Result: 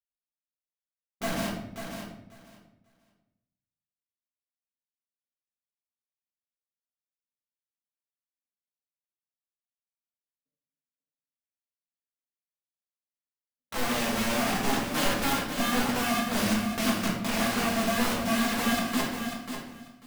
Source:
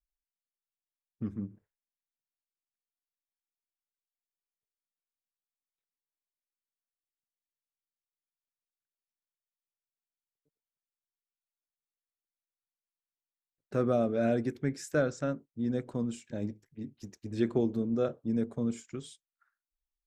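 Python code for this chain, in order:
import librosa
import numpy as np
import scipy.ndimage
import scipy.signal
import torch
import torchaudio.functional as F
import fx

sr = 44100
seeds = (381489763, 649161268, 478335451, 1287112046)

p1 = fx.double_bandpass(x, sr, hz=370.0, octaves=1.2)
p2 = fx.tilt_eq(p1, sr, slope=-3.0)
p3 = fx.leveller(p2, sr, passes=5)
p4 = (np.mod(10.0 ** (28.5 / 20.0) * p3 + 1.0, 2.0) - 1.0) / 10.0 ** (28.5 / 20.0)
p5 = fx.rider(p4, sr, range_db=3, speed_s=0.5)
p6 = p5 + fx.echo_feedback(p5, sr, ms=542, feedback_pct=17, wet_db=-8, dry=0)
y = fx.room_shoebox(p6, sr, seeds[0], volume_m3=200.0, walls='mixed', distance_m=1.6)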